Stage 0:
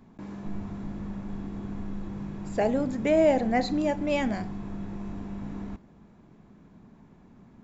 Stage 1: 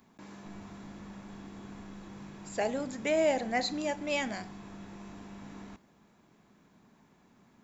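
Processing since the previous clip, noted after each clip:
spectral tilt +3 dB per octave
level −3.5 dB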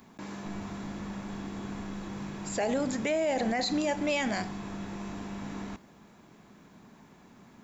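brickwall limiter −29 dBFS, peak gain reduction 11.5 dB
level +8 dB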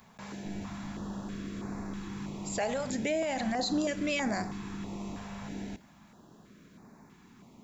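notch on a step sequencer 3.1 Hz 310–3,100 Hz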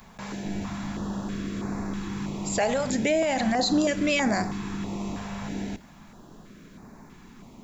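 background noise brown −62 dBFS
level +7 dB

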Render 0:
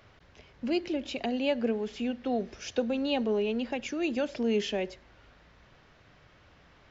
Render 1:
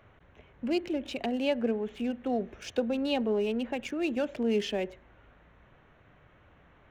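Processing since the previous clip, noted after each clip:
adaptive Wiener filter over 9 samples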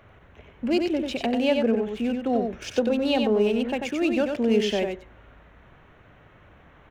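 single-tap delay 92 ms −5 dB
level +5.5 dB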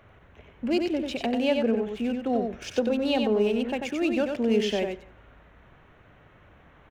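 slap from a distant wall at 30 metres, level −24 dB
level −2 dB

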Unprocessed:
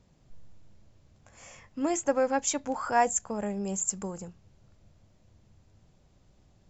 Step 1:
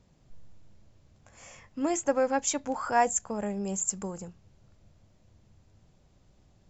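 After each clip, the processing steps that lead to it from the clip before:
no processing that can be heard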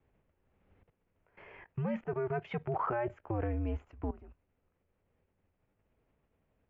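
output level in coarse steps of 18 dB
single-sideband voice off tune −120 Hz 160–2,800 Hz
level +3.5 dB

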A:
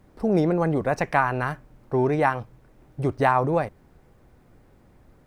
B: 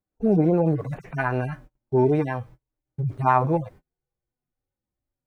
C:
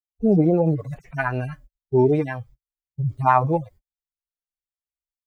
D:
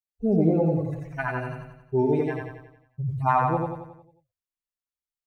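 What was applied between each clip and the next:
harmonic-percussive split with one part muted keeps harmonic; noise gate −46 dBFS, range −33 dB; level +3 dB
spectral dynamics exaggerated over time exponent 1.5; level +3.5 dB
repeating echo 90 ms, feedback 50%, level −3 dB; level −5.5 dB

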